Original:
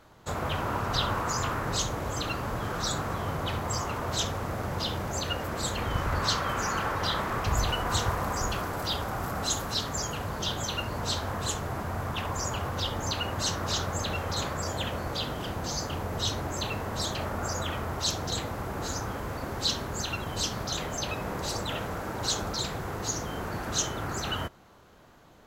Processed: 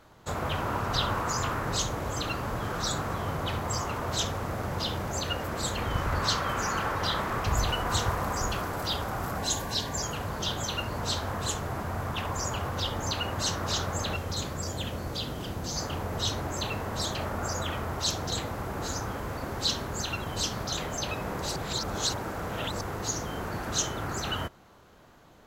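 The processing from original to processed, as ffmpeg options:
-filter_complex "[0:a]asettb=1/sr,asplit=3[s0][s1][s2];[s0]atrim=end=9.384[s3];[s1]atrim=start=9.38:end=10.03,asetpts=PTS-STARTPTS,afade=t=in:d=0.004:c=qsin,afade=t=out:st=0.646:d=0.004:c=qsin,asuperstop=centerf=1300:order=20:qfactor=5.6[s4];[s2]atrim=start=10.026[s5];[s3][s4]acrossfade=d=0.004:c1=hsin:c2=qsin[s6];[s6][s5]acrossfade=d=0.004:c1=qsin:c2=hsin,asettb=1/sr,asplit=3[s7][s8][s9];[s7]atrim=end=14.164[s10];[s8]atrim=start=14.16:end=15.76,asetpts=PTS-STARTPTS,afade=t=in:d=0.004:c=qsin,afade=t=out:st=1.596:d=0.004:c=qsin,acrossover=split=470|3000[s11][s12][s13];[s12]acompressor=threshold=0.00562:ratio=2:attack=3.2:release=140:knee=2.83:detection=peak[s14];[s11][s14][s13]amix=inputs=3:normalize=0[s15];[s9]atrim=start=15.756[s16];[s10][s15]acrossfade=d=0.004:c1=hsin:c2=qsin[s17];[s17][s16]acrossfade=d=0.004:c1=qsin:c2=hsin,asplit=3[s18][s19][s20];[s18]atrim=end=21.562[s21];[s19]atrim=start=21.558:end=22.812,asetpts=PTS-STARTPTS,areverse[s22];[s20]atrim=start=22.808[s23];[s21][s22]acrossfade=d=0.004:c1=hsin:c2=hsin[s24];[s24][s23]acrossfade=d=0.004:c1=hsin:c2=hsin"

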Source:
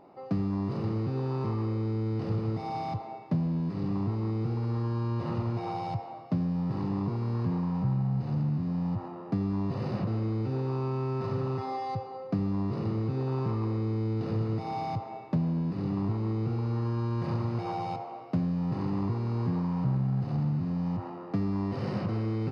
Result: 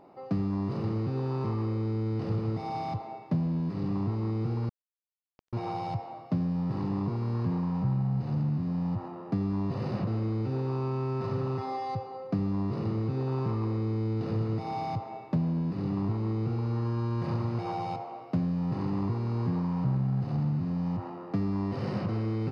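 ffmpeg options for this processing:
-filter_complex "[0:a]asettb=1/sr,asplit=3[s0][s1][s2];[s0]atrim=end=4.694[s3];[s1]atrim=start=4.69:end=5.53,asetpts=PTS-STARTPTS,afade=t=in:d=0.004:c=qsin,afade=t=out:st=0.836:d=0.004:c=qsin,acrusher=bits=2:mix=0:aa=0.5[s4];[s2]atrim=start=5.526[s5];[s3][s4]acrossfade=d=0.004:c1=hsin:c2=qsin[s6];[s6][s5]acrossfade=d=0.004:c1=qsin:c2=hsin"

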